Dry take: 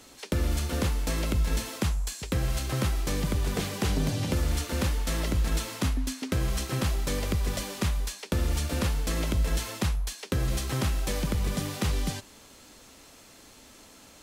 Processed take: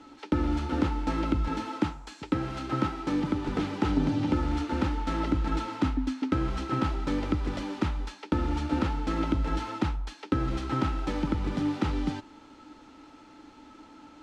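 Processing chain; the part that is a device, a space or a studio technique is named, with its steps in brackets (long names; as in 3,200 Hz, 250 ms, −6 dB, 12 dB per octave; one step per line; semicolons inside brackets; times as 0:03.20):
0:01.48–0:03.49: high-pass filter 100 Hz 12 dB per octave
inside a cardboard box (low-pass filter 3,600 Hz 12 dB per octave; hollow resonant body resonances 300/870/1,300 Hz, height 16 dB, ringing for 60 ms)
level −3.5 dB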